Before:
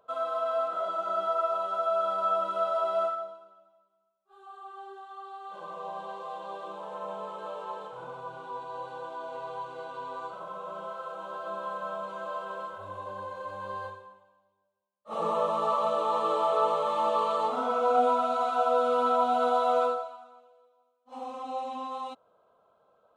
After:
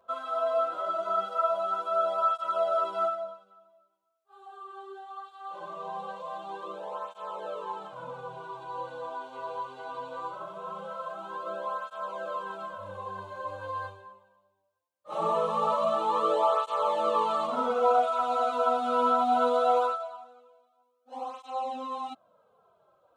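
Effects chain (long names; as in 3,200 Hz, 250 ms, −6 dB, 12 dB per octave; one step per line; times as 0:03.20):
through-zero flanger with one copy inverted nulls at 0.21 Hz, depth 6.7 ms
level +3.5 dB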